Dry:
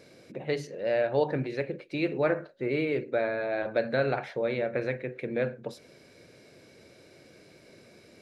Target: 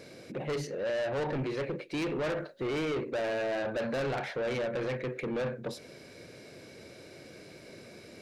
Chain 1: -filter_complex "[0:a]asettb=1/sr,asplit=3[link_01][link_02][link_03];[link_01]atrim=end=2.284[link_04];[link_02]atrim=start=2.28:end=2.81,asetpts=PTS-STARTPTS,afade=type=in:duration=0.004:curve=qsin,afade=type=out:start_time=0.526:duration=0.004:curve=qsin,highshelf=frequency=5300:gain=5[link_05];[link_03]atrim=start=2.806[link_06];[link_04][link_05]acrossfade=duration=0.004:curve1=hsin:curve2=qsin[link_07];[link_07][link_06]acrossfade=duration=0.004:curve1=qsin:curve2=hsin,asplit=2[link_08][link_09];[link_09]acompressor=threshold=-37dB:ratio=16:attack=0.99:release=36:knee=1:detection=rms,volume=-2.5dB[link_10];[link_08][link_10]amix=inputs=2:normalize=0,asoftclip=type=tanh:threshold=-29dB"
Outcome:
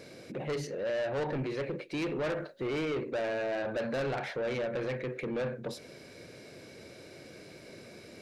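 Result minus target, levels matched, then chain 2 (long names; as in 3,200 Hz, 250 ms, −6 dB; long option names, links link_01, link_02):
downward compressor: peak gain reduction +10.5 dB
-filter_complex "[0:a]asettb=1/sr,asplit=3[link_01][link_02][link_03];[link_01]atrim=end=2.284[link_04];[link_02]atrim=start=2.28:end=2.81,asetpts=PTS-STARTPTS,afade=type=in:duration=0.004:curve=qsin,afade=type=out:start_time=0.526:duration=0.004:curve=qsin,highshelf=frequency=5300:gain=5[link_05];[link_03]atrim=start=2.806[link_06];[link_04][link_05]acrossfade=duration=0.004:curve1=hsin:curve2=qsin[link_07];[link_07][link_06]acrossfade=duration=0.004:curve1=qsin:curve2=hsin,asplit=2[link_08][link_09];[link_09]acompressor=threshold=-26dB:ratio=16:attack=0.99:release=36:knee=1:detection=rms,volume=-2.5dB[link_10];[link_08][link_10]amix=inputs=2:normalize=0,asoftclip=type=tanh:threshold=-29dB"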